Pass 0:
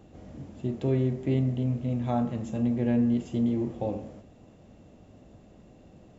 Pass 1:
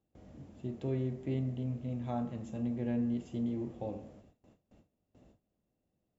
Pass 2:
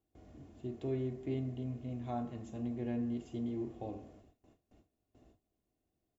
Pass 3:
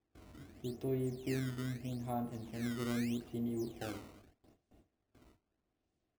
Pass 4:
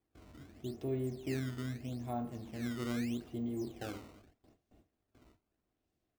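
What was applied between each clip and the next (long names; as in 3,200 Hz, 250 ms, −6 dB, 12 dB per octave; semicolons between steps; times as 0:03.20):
noise gate with hold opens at −42 dBFS; level −8.5 dB
comb filter 2.8 ms, depth 46%; level −2.5 dB
sample-and-hold swept by an LFO 15×, swing 160% 0.8 Hz
bad sample-rate conversion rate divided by 2×, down filtered, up hold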